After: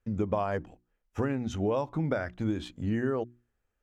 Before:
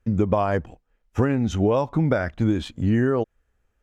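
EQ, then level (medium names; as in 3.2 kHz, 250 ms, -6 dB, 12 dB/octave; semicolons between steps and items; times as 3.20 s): bass shelf 130 Hz -3.5 dB; hum notches 60/120/180/240/300/360 Hz; -7.5 dB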